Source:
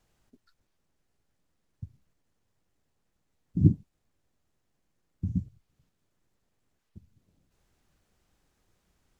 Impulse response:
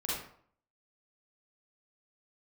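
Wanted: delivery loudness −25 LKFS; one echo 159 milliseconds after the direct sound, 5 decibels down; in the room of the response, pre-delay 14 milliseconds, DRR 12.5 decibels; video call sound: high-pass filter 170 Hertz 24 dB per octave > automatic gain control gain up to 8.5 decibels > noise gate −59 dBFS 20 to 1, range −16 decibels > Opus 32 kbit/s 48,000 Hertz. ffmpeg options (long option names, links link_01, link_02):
-filter_complex "[0:a]aecho=1:1:159:0.562,asplit=2[link_01][link_02];[1:a]atrim=start_sample=2205,adelay=14[link_03];[link_02][link_03]afir=irnorm=-1:irlink=0,volume=-17dB[link_04];[link_01][link_04]amix=inputs=2:normalize=0,highpass=frequency=170:width=0.5412,highpass=frequency=170:width=1.3066,dynaudnorm=maxgain=8.5dB,agate=range=-16dB:threshold=-59dB:ratio=20,volume=8dB" -ar 48000 -c:a libopus -b:a 32k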